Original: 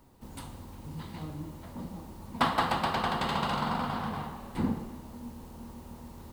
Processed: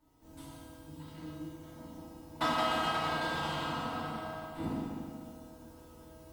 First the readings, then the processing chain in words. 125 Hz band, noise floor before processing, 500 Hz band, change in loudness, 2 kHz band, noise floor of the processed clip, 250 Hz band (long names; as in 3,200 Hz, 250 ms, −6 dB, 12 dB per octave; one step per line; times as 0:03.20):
−6.5 dB, −48 dBFS, −1.0 dB, −2.5 dB, −1.0 dB, −55 dBFS, −4.5 dB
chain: harmonic generator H 7 −24 dB, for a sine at −10.5 dBFS
tuned comb filter 320 Hz, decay 0.42 s, harmonics all, mix 90%
feedback delay network reverb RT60 2.1 s, low-frequency decay 0.95×, high-frequency decay 0.9×, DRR −9 dB
level +5.5 dB